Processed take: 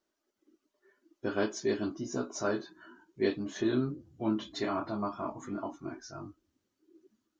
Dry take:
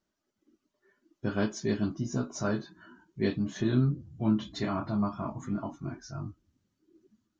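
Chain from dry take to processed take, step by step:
low shelf with overshoot 240 Hz −9.5 dB, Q 1.5

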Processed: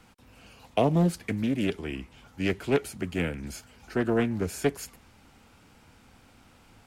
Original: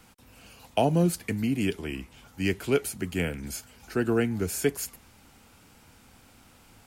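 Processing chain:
high-shelf EQ 6,900 Hz −9.5 dB
highs frequency-modulated by the lows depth 0.42 ms

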